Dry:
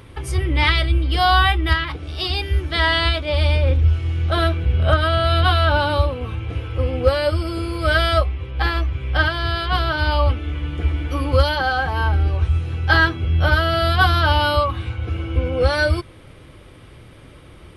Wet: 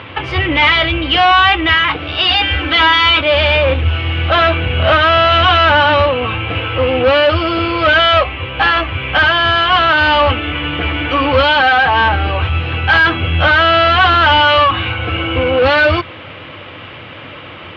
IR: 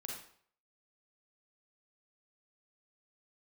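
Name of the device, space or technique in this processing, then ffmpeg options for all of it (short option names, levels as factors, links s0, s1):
overdrive pedal into a guitar cabinet: -filter_complex "[0:a]asettb=1/sr,asplit=3[s0][s1][s2];[s0]atrim=end=2.284[s3];[s1]atrim=start=2.28:end=3.21,asetpts=PTS-STARTPTS,afade=t=in:d=0.004:c=qsin,afade=t=out:st=0.926:d=0.004:c=qsin,aecho=1:1:3.9:0.99,atrim=end_sample=41013[s4];[s2]atrim=start=3.206[s5];[s3][s4]acrossfade=d=0.004:c1=hsin:c2=qsin[s6];[s6][s5]acrossfade=d=0.004:c1=qsin:c2=hsin,asplit=2[s7][s8];[s8]highpass=f=720:p=1,volume=22.4,asoftclip=type=tanh:threshold=0.891[s9];[s7][s9]amix=inputs=2:normalize=0,lowpass=f=2400:p=1,volume=0.501,highpass=88,equalizer=f=92:t=q:w=4:g=9,equalizer=f=390:t=q:w=4:g=-7,equalizer=f=2800:t=q:w=4:g=7,lowpass=f=3800:w=0.5412,lowpass=f=3800:w=1.3066,volume=0.891"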